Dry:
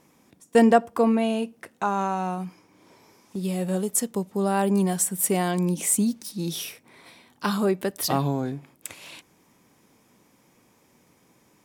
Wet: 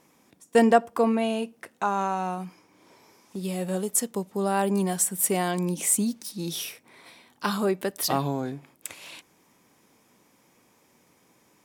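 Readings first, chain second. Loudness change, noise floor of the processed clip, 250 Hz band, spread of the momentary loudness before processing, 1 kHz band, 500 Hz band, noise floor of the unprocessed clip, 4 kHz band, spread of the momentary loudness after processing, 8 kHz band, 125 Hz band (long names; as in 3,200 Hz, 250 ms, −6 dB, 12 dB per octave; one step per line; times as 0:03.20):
−1.5 dB, −63 dBFS, −3.5 dB, 17 LU, −0.5 dB, −1.0 dB, −62 dBFS, 0.0 dB, 15 LU, 0.0 dB, −4.0 dB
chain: low-shelf EQ 240 Hz −6 dB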